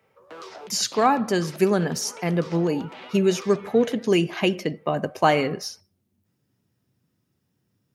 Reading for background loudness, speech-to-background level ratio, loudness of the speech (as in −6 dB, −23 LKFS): −43.0 LKFS, 19.5 dB, −23.5 LKFS